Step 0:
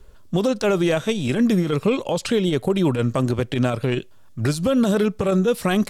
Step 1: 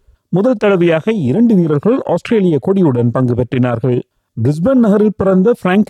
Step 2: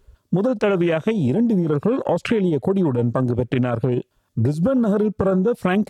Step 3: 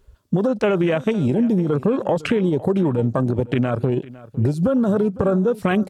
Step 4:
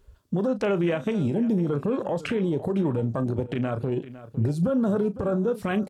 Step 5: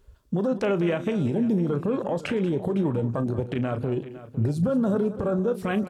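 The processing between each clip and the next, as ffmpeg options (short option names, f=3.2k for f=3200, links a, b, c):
-af "afwtdn=0.0355,highpass=66,alimiter=level_in=12dB:limit=-1dB:release=50:level=0:latency=1,volume=-2.5dB"
-af "acompressor=threshold=-16dB:ratio=6"
-af "aecho=1:1:506:0.112"
-filter_complex "[0:a]alimiter=limit=-15dB:level=0:latency=1:release=124,asplit=2[a][b];[b]adelay=35,volume=-13dB[c];[a][c]amix=inputs=2:normalize=0,volume=-2.5dB"
-af "aecho=1:1:185:0.188"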